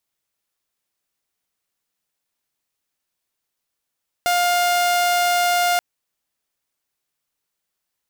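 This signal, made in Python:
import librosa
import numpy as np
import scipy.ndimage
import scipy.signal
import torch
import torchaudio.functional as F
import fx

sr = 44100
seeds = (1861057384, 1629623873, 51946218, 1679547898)

y = 10.0 ** (-13.5 / 20.0) * (2.0 * np.mod(706.0 * (np.arange(round(1.53 * sr)) / sr), 1.0) - 1.0)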